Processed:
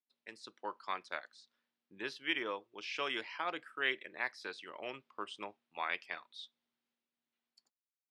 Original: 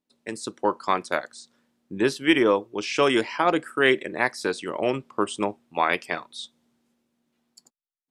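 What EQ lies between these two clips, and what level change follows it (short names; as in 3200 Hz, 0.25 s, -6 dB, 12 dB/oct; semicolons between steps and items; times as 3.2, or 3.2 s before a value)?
HPF 49 Hz; air absorption 310 m; pre-emphasis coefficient 0.97; +2.5 dB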